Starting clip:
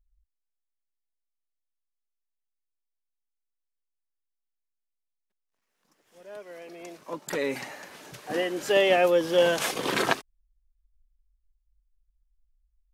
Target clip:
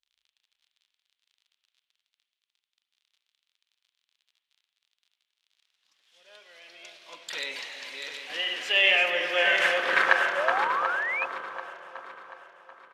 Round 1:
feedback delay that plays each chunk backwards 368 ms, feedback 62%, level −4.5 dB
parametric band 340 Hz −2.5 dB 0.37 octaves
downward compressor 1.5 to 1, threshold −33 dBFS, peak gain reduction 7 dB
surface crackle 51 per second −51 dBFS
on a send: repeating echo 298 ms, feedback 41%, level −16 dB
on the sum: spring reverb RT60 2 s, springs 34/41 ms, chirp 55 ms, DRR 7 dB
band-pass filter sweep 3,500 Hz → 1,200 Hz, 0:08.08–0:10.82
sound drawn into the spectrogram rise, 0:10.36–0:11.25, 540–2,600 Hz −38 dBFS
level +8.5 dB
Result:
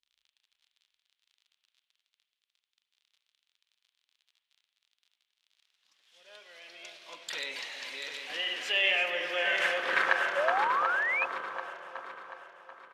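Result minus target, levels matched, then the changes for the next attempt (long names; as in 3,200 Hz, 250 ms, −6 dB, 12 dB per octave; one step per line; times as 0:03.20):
downward compressor: peak gain reduction +7 dB
remove: downward compressor 1.5 to 1, threshold −33 dBFS, peak gain reduction 7 dB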